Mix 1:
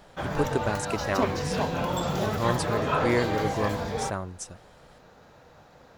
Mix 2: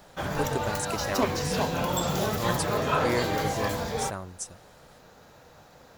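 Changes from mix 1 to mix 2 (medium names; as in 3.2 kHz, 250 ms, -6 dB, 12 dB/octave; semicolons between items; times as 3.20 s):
speech -4.5 dB; master: add treble shelf 6 kHz +11.5 dB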